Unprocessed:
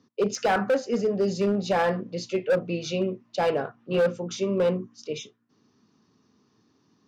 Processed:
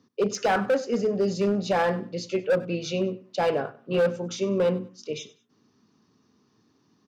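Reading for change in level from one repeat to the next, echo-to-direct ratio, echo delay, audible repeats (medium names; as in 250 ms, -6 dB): -10.5 dB, -18.5 dB, 97 ms, 2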